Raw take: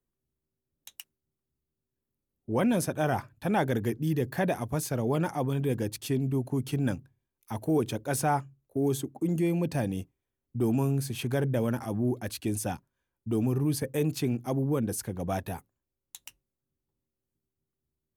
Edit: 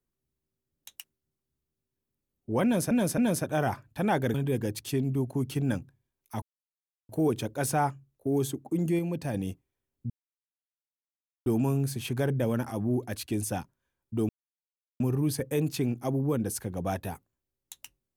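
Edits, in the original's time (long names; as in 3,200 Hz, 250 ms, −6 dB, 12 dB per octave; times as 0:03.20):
0:02.64–0:02.91: repeat, 3 plays
0:03.80–0:05.51: remove
0:07.59: splice in silence 0.67 s
0:09.49–0:09.84: clip gain −3.5 dB
0:10.60: splice in silence 1.36 s
0:13.43: splice in silence 0.71 s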